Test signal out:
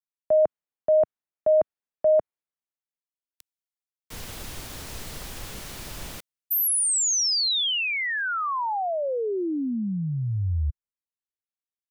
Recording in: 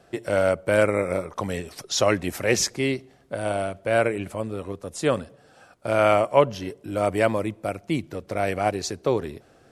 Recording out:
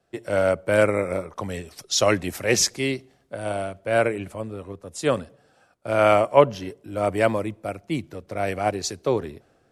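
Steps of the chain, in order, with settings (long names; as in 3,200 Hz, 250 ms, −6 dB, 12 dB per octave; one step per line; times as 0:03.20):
multiband upward and downward expander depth 40%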